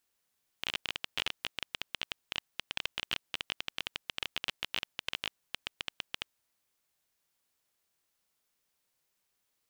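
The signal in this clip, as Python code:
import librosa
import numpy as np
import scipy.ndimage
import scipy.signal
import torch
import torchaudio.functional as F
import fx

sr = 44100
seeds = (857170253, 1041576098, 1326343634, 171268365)

y = fx.geiger_clicks(sr, seeds[0], length_s=5.88, per_s=16.0, level_db=-15.0)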